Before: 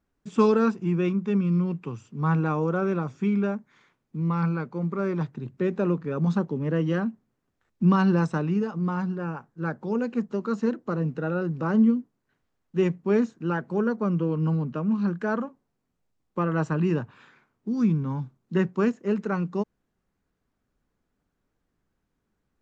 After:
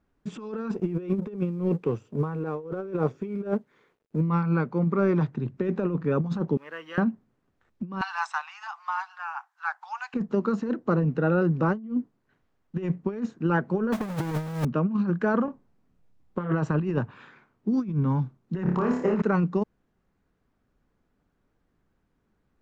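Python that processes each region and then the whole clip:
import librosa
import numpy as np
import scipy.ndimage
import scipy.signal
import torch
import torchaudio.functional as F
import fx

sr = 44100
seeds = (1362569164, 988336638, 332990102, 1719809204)

y = fx.chain(x, sr, fx.law_mismatch(coded='A'),
    fx.peak_eq(hz=450.0, db=12.0, octaves=0.78), at=(0.74, 4.21))
y = fx.chain(y, sr, fx.highpass(hz=1400.0, slope=12),
    fx.quant_companded(bits=6),
    fx.high_shelf(hz=3600.0, db=-8.5), at=(6.57, 6.98))
y = fx.chain(y, sr, fx.steep_highpass(hz=780.0, slope=72),
    fx.high_shelf(hz=4600.0, db=6.5), at=(8.01, 10.14))
y = fx.chain(y, sr, fx.halfwave_hold(),
    fx.lowpass(hz=2000.0, slope=12),
    fx.mod_noise(seeds[0], snr_db=14), at=(13.92, 14.65))
y = fx.chain(y, sr, fx.low_shelf(hz=170.0, db=7.5),
    fx.doubler(ms=28.0, db=-6.0),
    fx.doppler_dist(depth_ms=0.23), at=(15.45, 16.52))
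y = fx.chain(y, sr, fx.peak_eq(hz=880.0, db=12.5, octaves=1.2),
    fx.over_compress(threshold_db=-28.0, ratio=-1.0),
    fx.room_flutter(wall_m=4.8, rt60_s=0.49), at=(18.63, 19.22))
y = fx.lowpass(y, sr, hz=2900.0, slope=6)
y = fx.over_compress(y, sr, threshold_db=-26.0, ratio=-0.5)
y = y * librosa.db_to_amplitude(1.5)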